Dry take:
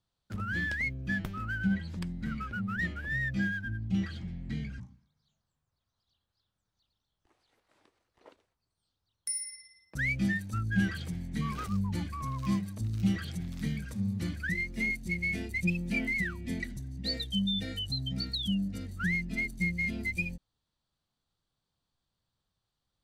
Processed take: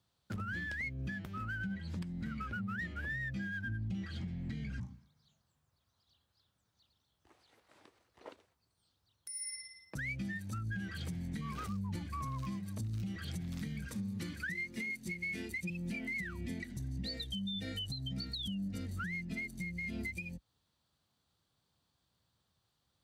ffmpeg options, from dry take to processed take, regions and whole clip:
-filter_complex "[0:a]asettb=1/sr,asplit=3[s0][s1][s2];[s0]atrim=end=13.874[s3];[s1]atrim=start=13.87:end=15.7,asetpts=PTS-STARTPTS,afade=t=in:d=0.004:c=qsin,afade=t=out:st=1.826:d=0.004:c=qsin,highpass=f=240:p=1,equalizer=f=680:w=4:g=-8.5[s4];[s2]atrim=start=15.696[s5];[s3][s4]acrossfade=d=0.004:c1=hsin:c2=qsin[s6];[s6][s5]acrossfade=d=0.004:c1=qsin:c2=hsin,highpass=f=57:w=0.5412,highpass=f=57:w=1.3066,acompressor=threshold=0.00891:ratio=4,alimiter=level_in=3.98:limit=0.0631:level=0:latency=1:release=190,volume=0.251,volume=1.78"

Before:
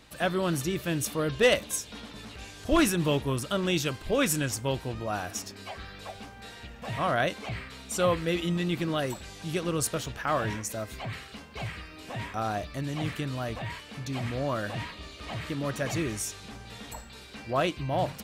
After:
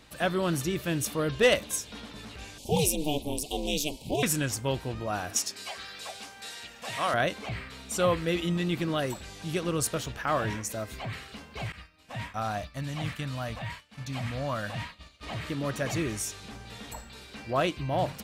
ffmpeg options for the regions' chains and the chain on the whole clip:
-filter_complex "[0:a]asettb=1/sr,asplit=3[s0][s1][s2];[s0]atrim=end=2.584[s3];[s1]atrim=start=2.58:end=4.23,asetpts=PTS-STARTPTS,afade=t=in:d=0.004:c=qsin,afade=t=out:st=1.646:d=0.004:c=qsin,aemphasis=mode=production:type=cd,aeval=exprs='val(0)*sin(2*PI*150*n/s)':c=same,asuperstop=centerf=1500:order=8:qfactor=0.98[s4];[s2]atrim=start=4.226[s5];[s3][s4]acrossfade=d=0.004:c1=hsin:c2=qsin[s6];[s6][s5]acrossfade=d=0.004:c1=qsin:c2=hsin,asettb=1/sr,asplit=3[s7][s8][s9];[s7]atrim=end=5.364[s10];[s8]atrim=start=5.36:end=7.14,asetpts=PTS-STARTPTS,afade=t=in:d=0.004:c=qsin,afade=t=out:st=1.776:d=0.004:c=qsin,lowpass=8300,aemphasis=mode=production:type=riaa[s11];[s9]atrim=start=7.136[s12];[s10][s11]acrossfade=d=0.004:c1=hsin:c2=qsin[s13];[s13][s12]acrossfade=d=0.004:c1=qsin:c2=hsin,asettb=1/sr,asplit=3[s14][s15][s16];[s14]atrim=end=11.724[s17];[s15]atrim=start=11.72:end=15.23,asetpts=PTS-STARTPTS,afade=t=in:d=0.004:c=qsin,afade=t=out:st=3.506:d=0.004:c=qsin,agate=range=0.0224:threshold=0.0141:ratio=3:release=100:detection=peak,equalizer=f=370:w=2.5:g=-13[s18];[s16]atrim=start=15.226[s19];[s17][s18]acrossfade=d=0.004:c1=hsin:c2=qsin[s20];[s20][s19]acrossfade=d=0.004:c1=qsin:c2=hsin"

